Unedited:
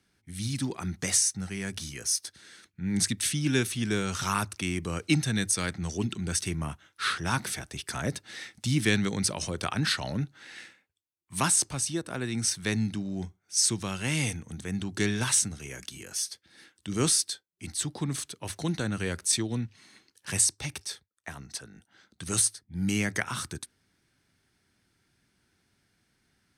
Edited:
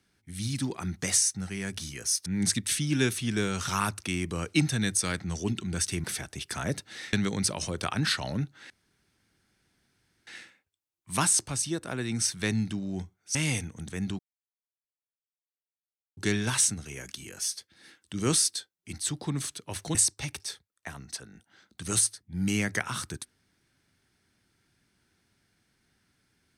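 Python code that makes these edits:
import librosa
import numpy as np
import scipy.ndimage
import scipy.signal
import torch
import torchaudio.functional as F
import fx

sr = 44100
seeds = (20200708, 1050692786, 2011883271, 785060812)

y = fx.edit(x, sr, fx.cut(start_s=2.26, length_s=0.54),
    fx.cut(start_s=6.58, length_s=0.84),
    fx.cut(start_s=8.51, length_s=0.42),
    fx.insert_room_tone(at_s=10.5, length_s=1.57),
    fx.cut(start_s=13.58, length_s=0.49),
    fx.insert_silence(at_s=14.91, length_s=1.98),
    fx.cut(start_s=18.69, length_s=1.67), tone=tone)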